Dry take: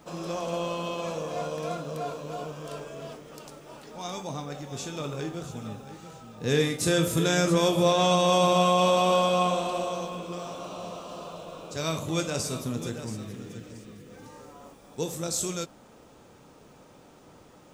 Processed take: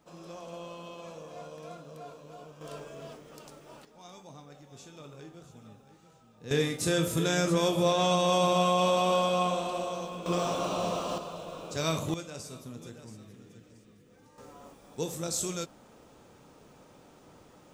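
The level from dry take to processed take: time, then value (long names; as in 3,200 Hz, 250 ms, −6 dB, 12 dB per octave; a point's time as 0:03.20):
−12 dB
from 0:02.61 −4.5 dB
from 0:03.85 −14 dB
from 0:06.51 −3.5 dB
from 0:10.26 +7 dB
from 0:11.18 0 dB
from 0:12.14 −12 dB
from 0:14.38 −2.5 dB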